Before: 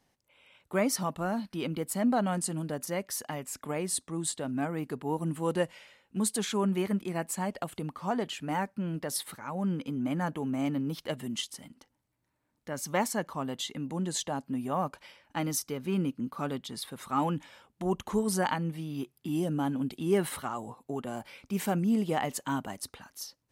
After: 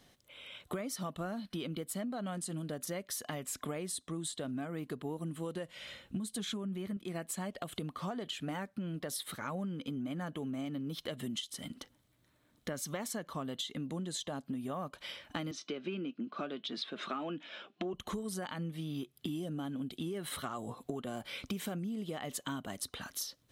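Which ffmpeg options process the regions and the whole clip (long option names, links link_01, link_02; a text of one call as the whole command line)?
ffmpeg -i in.wav -filter_complex "[0:a]asettb=1/sr,asplit=3[link_01][link_02][link_03];[link_01]atrim=end=5.754[link_04];[link_02]atrim=start=5.75:end=6.97,asetpts=PTS-STARTPTS,afade=type=in:duration=0.004:curve=qsin,afade=type=out:start_time=1.216:duration=0.004:curve=qsin,lowshelf=frequency=220:gain=10.5,bandreject=frequency=440:width=10[link_05];[link_03]atrim=start=6.966[link_06];[link_04][link_05]acrossfade=duration=0.004:curve1=hsin:curve2=qsin[link_07];[link_07][link_06]acrossfade=duration=0.004:curve1=qsin:curve2=hsin,asettb=1/sr,asplit=3[link_08][link_09][link_10];[link_08]atrim=end=15.514[link_11];[link_09]atrim=start=15.51:end=17.94,asetpts=PTS-STARTPTS,afade=type=in:duration=0.004:curve=qsin,afade=type=out:start_time=2.426:duration=0.004:curve=qsin,flanger=delay=4.1:depth=1:regen=76:speed=1.6:shape=triangular,highpass=frequency=180:width=0.5412,highpass=frequency=180:width=1.3066,equalizer=frequency=340:width_type=q:width=4:gain=9,equalizer=frequency=640:width_type=q:width=4:gain=7,equalizer=frequency=1500:width_type=q:width=4:gain=6,equalizer=frequency=2600:width_type=q:width=4:gain=9,lowpass=frequency=5400:width=0.5412,lowpass=frequency=5400:width=1.3066[link_12];[link_10]atrim=start=17.936[link_13];[link_11][link_12]acrossfade=duration=0.004:curve1=hsin:curve2=qsin[link_14];[link_14][link_13]acrossfade=duration=0.004:curve1=qsin:curve2=hsin,superequalizer=9b=0.501:13b=2,alimiter=limit=-22dB:level=0:latency=1:release=94,acompressor=threshold=-44dB:ratio=16,volume=8.5dB" out.wav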